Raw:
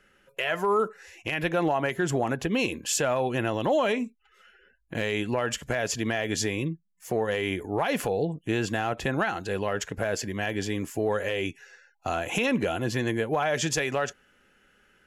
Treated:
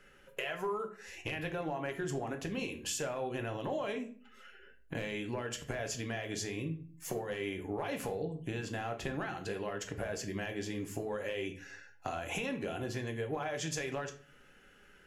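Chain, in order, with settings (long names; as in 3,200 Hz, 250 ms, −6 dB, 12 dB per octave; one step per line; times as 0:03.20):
downward compressor 5 to 1, threshold −37 dBFS, peak gain reduction 15 dB
rectangular room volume 42 cubic metres, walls mixed, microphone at 0.36 metres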